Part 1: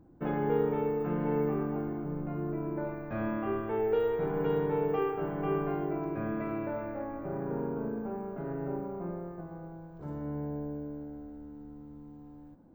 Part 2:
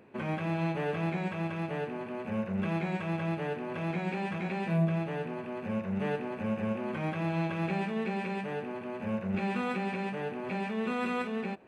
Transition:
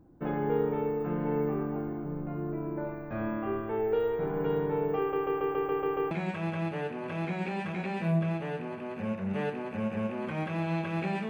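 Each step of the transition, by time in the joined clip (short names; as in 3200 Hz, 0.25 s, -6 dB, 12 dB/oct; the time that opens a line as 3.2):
part 1
4.99 stutter in place 0.14 s, 8 plays
6.11 switch to part 2 from 2.77 s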